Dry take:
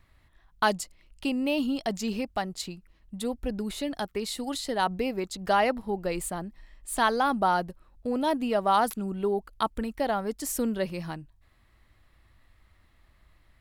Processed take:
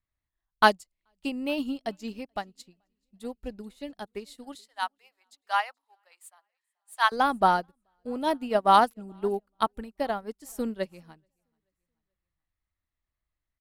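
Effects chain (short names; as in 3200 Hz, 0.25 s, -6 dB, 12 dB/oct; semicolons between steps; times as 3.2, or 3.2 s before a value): 4.55–7.12 HPF 830 Hz 24 dB/oct; feedback echo 0.432 s, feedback 49%, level -22 dB; upward expander 2.5:1, over -42 dBFS; gain +6.5 dB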